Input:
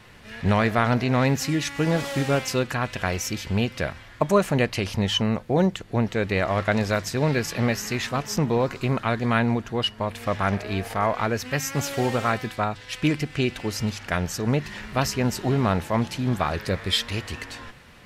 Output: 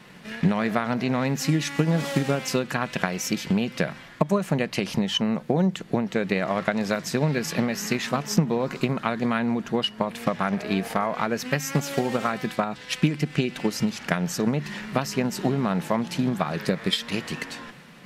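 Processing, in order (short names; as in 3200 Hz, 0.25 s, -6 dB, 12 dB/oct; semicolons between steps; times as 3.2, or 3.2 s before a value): transient shaper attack +8 dB, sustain +2 dB; compressor, threshold -21 dBFS, peak gain reduction 12.5 dB; resonant low shelf 120 Hz -11 dB, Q 3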